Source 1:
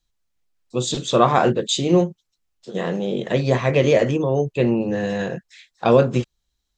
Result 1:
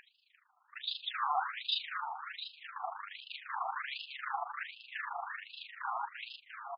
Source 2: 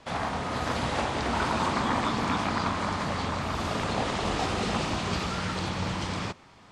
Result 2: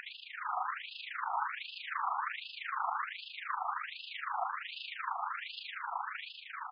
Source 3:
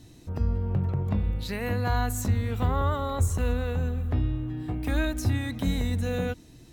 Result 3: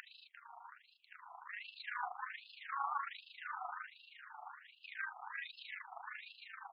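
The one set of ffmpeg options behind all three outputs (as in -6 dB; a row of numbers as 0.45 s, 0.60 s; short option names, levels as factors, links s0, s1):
-filter_complex "[0:a]lowpass=5800,aemphasis=mode=reproduction:type=75fm,acompressor=mode=upward:threshold=0.0562:ratio=2.5,tremolo=f=26:d=0.788,aeval=exprs='(tanh(28.2*val(0)+0.35)-tanh(0.35))/28.2':c=same,asplit=8[s0][s1][s2][s3][s4][s5][s6][s7];[s1]adelay=348,afreqshift=76,volume=0.562[s8];[s2]adelay=696,afreqshift=152,volume=0.302[s9];[s3]adelay=1044,afreqshift=228,volume=0.164[s10];[s4]adelay=1392,afreqshift=304,volume=0.0881[s11];[s5]adelay=1740,afreqshift=380,volume=0.0479[s12];[s6]adelay=2088,afreqshift=456,volume=0.0257[s13];[s7]adelay=2436,afreqshift=532,volume=0.014[s14];[s0][s8][s9][s10][s11][s12][s13][s14]amix=inputs=8:normalize=0,afftfilt=real='re*between(b*sr/1024,960*pow(3700/960,0.5+0.5*sin(2*PI*1.3*pts/sr))/1.41,960*pow(3700/960,0.5+0.5*sin(2*PI*1.3*pts/sr))*1.41)':imag='im*between(b*sr/1024,960*pow(3700/960,0.5+0.5*sin(2*PI*1.3*pts/sr))/1.41,960*pow(3700/960,0.5+0.5*sin(2*PI*1.3*pts/sr))*1.41)':win_size=1024:overlap=0.75,volume=1.58"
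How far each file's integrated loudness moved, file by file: -18.5 LU, -9.0 LU, -17.5 LU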